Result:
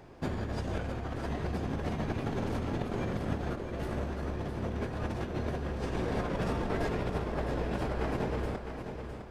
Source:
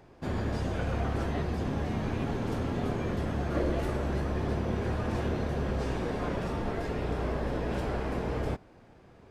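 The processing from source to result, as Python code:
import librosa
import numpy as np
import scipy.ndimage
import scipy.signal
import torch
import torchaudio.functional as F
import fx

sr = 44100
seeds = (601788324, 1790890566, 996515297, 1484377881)

y = fx.over_compress(x, sr, threshold_db=-33.0, ratio=-0.5)
y = fx.echo_feedback(y, sr, ms=658, feedback_pct=39, wet_db=-8)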